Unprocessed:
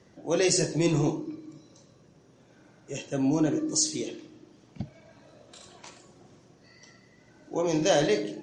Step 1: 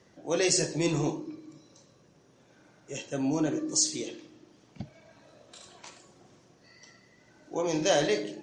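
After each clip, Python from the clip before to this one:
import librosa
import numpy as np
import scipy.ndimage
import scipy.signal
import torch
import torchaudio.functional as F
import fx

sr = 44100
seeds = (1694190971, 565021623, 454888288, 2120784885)

y = fx.low_shelf(x, sr, hz=440.0, db=-5.0)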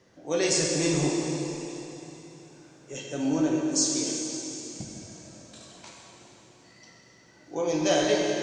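y = fx.rev_plate(x, sr, seeds[0], rt60_s=3.6, hf_ratio=1.0, predelay_ms=0, drr_db=-1.0)
y = y * 10.0 ** (-1.0 / 20.0)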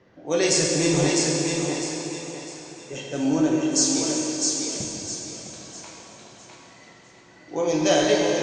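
y = fx.env_lowpass(x, sr, base_hz=2900.0, full_db=-26.0)
y = fx.echo_thinned(y, sr, ms=655, feedback_pct=35, hz=360.0, wet_db=-3.0)
y = y * 10.0 ** (4.0 / 20.0)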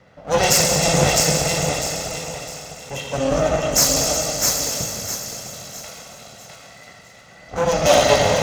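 y = fx.lower_of_two(x, sr, delay_ms=1.5)
y = scipy.signal.sosfilt(scipy.signal.butter(2, 46.0, 'highpass', fs=sr, output='sos'), y)
y = y * 10.0 ** (7.0 / 20.0)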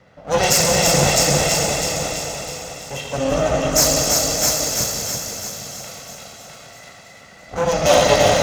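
y = x + 10.0 ** (-4.0 / 20.0) * np.pad(x, (int(339 * sr / 1000.0), 0))[:len(x)]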